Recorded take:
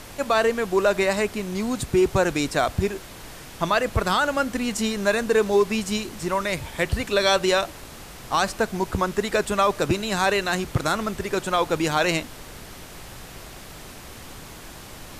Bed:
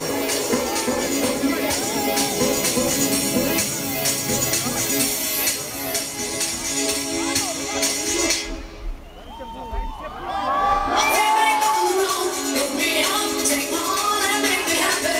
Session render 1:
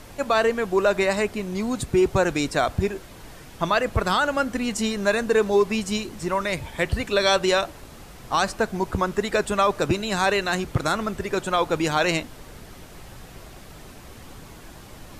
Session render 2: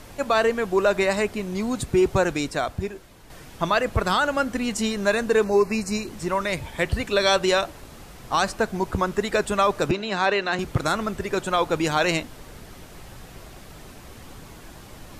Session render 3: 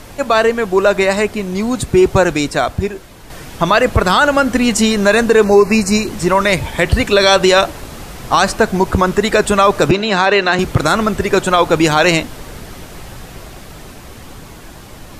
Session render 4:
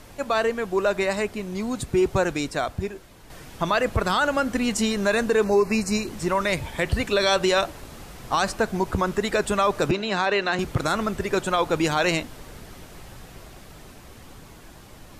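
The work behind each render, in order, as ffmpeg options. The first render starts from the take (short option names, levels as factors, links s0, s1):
-af "afftdn=nr=6:nf=-41"
-filter_complex "[0:a]asettb=1/sr,asplit=3[s0][s1][s2];[s0]atrim=end=5.444[s3];[s1]atrim=start=5.44:end=6.07,asetpts=PTS-STARTPTS,afade=t=in:d=0.004:c=qsin,afade=t=out:st=0.626:d=0.004:c=qsin,asuperstop=centerf=3300:order=8:qfactor=2.8[s4];[s2]atrim=start=6.066[s5];[s3][s4]acrossfade=d=0.004:c1=hsin:c2=qsin[s6];[s6][s5]acrossfade=d=0.004:c1=qsin:c2=hsin,asettb=1/sr,asplit=3[s7][s8][s9];[s7]atrim=end=9.914[s10];[s8]atrim=start=9.91:end=10.59,asetpts=PTS-STARTPTS,afade=t=in:d=0.004:c=qsin,afade=t=out:st=0.676:d=0.004:c=qsin,acrossover=split=170 5200:gain=0.126 1 0.1[s11][s12][s13];[s11][s12][s13]amix=inputs=3:normalize=0[s14];[s9]atrim=start=10.586[s15];[s10][s14]acrossfade=d=0.004:c1=hsin:c2=qsin[s16];[s16][s15]acrossfade=d=0.004:c1=qsin:c2=hsin,asplit=2[s17][s18];[s17]atrim=end=3.3,asetpts=PTS-STARTPTS,afade=t=out:st=2.18:d=1.12:c=qua:silence=0.446684[s19];[s18]atrim=start=3.3,asetpts=PTS-STARTPTS,afade=t=in:d=0.004:c=hsin:silence=0.446684[s20];[s19][s20]concat=n=2:v=0:a=1"
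-af "dynaudnorm=f=670:g=9:m=1.88,alimiter=level_in=2.51:limit=0.891:release=50:level=0:latency=1"
-af "volume=0.299"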